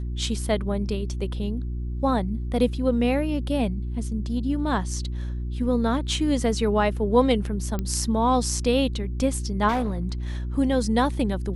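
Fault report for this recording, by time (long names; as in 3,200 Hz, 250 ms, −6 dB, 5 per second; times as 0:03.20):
mains hum 60 Hz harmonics 6 −29 dBFS
0:07.79: click −15 dBFS
0:09.68–0:10.07: clipping −20.5 dBFS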